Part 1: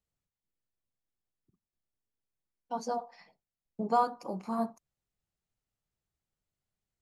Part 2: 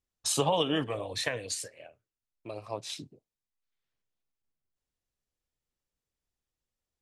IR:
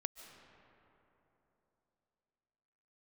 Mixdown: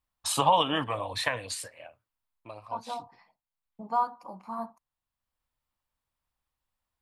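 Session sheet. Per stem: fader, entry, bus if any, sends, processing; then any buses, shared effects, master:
−5.0 dB, 0.00 s, no send, no processing
+3.0 dB, 0.00 s, no send, automatic ducking −9 dB, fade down 0.45 s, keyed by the first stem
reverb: not used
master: graphic EQ with 15 bands 160 Hz −5 dB, 400 Hz −10 dB, 1,000 Hz +9 dB, 6,300 Hz −8 dB

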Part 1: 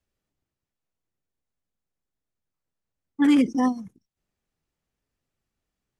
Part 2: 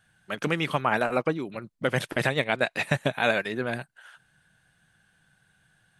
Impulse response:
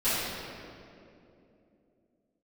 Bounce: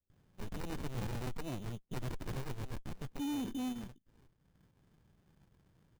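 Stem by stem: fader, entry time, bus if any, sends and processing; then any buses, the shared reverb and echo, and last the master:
−7.5 dB, 0.00 s, no send, Bessel low-pass filter 570 Hz
+0.5 dB, 0.10 s, no send, windowed peak hold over 65 samples; automatic ducking −15 dB, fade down 0.95 s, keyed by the first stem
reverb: not used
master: sample-rate reduction 3,300 Hz, jitter 0%; soft clipping −28.5 dBFS, distortion −9 dB; brickwall limiter −34 dBFS, peak gain reduction 5.5 dB

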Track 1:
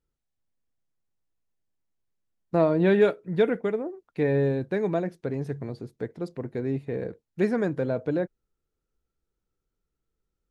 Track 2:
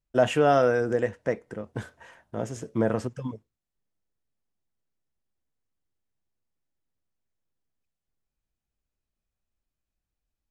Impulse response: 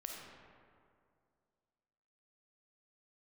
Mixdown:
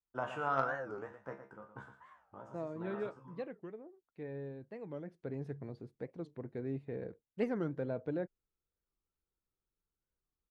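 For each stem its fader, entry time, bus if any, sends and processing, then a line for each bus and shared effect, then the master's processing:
0:04.84 −17 dB → 0:05.32 −7.5 dB, 0.00 s, no send, no echo send, no processing
−8.5 dB, 0.00 s, no send, echo send −10 dB, flat-topped bell 1,100 Hz +13.5 dB 1.1 octaves; tuned comb filter 67 Hz, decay 0.27 s, harmonics all, mix 90%; automatic ducking −8 dB, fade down 0.25 s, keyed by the first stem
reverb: not used
echo: single-tap delay 115 ms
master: harmonic generator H 3 −20 dB, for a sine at −16.5 dBFS; low-pass filter 2,900 Hz 6 dB per octave; wow of a warped record 45 rpm, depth 250 cents

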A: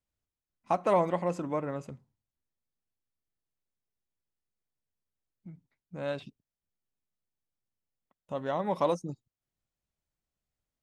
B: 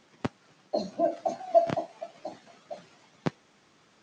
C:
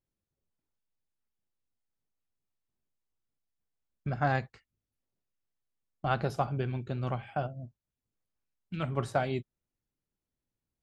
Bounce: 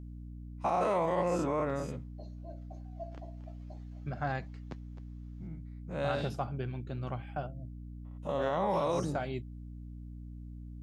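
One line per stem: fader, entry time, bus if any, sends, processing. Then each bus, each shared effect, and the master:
−1.5 dB, 0.00 s, no send, no echo send, every bin's largest magnitude spread in time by 120 ms
0:02.99 −24 dB → 0:03.53 −16.5 dB, 1.45 s, no send, echo send −13 dB, no processing
−5.0 dB, 0.00 s, no send, no echo send, no processing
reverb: not used
echo: single-tap delay 261 ms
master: mains hum 60 Hz, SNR 12 dB; brickwall limiter −21.5 dBFS, peak gain reduction 10 dB

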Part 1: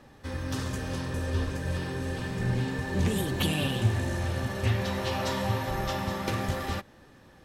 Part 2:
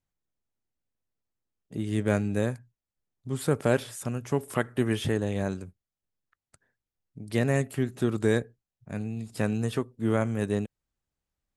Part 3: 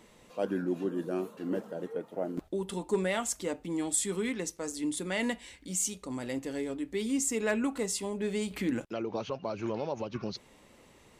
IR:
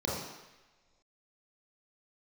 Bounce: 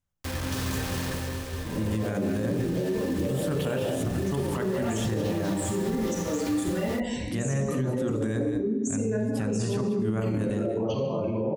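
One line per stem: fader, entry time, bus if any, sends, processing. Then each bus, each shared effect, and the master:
+1.5 dB, 0.00 s, no send, echo send −7 dB, bit-depth reduction 6 bits, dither none; automatic ducking −18 dB, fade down 0.60 s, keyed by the second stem
+1.0 dB, 0.00 s, send −13.5 dB, echo send −13.5 dB, no processing
−7.5 dB, 1.65 s, send −3.5 dB, no echo send, gate on every frequency bin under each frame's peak −15 dB strong; envelope flattener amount 70%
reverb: on, pre-delay 26 ms
echo: single-tap delay 188 ms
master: brickwall limiter −19.5 dBFS, peak gain reduction 12 dB

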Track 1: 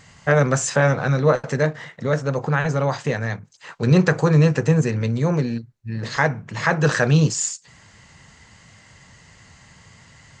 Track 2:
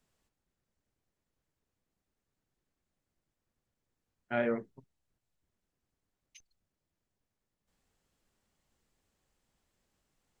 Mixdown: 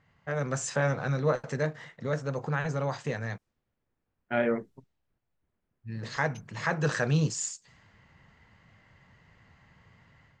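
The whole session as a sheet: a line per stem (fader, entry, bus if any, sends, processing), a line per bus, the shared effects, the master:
−17.0 dB, 0.00 s, muted 0:03.38–0:05.71, no send, no processing
−3.5 dB, 0.00 s, no send, no processing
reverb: not used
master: low-pass that shuts in the quiet parts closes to 2,100 Hz, open at −40.5 dBFS; automatic gain control gain up to 7.5 dB

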